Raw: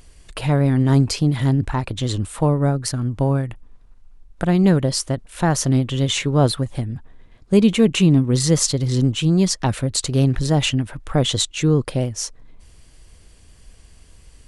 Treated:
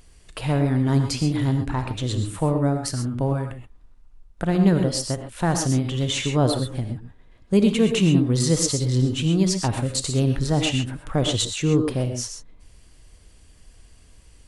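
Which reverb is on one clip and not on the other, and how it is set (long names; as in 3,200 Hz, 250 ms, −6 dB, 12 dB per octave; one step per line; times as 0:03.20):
reverb whose tail is shaped and stops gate 150 ms rising, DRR 5.5 dB
level −4 dB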